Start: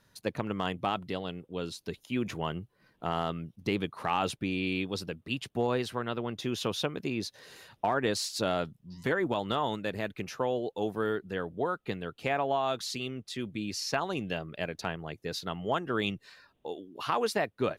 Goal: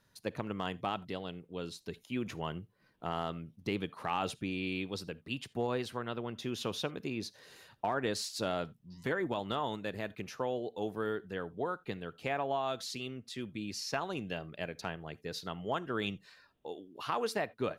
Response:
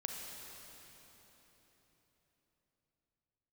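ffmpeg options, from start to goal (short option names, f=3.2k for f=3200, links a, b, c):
-filter_complex "[0:a]asplit=2[a][b];[1:a]atrim=start_sample=2205,atrim=end_sample=3969[c];[b][c]afir=irnorm=-1:irlink=0,volume=-10dB[d];[a][d]amix=inputs=2:normalize=0,volume=-6.5dB"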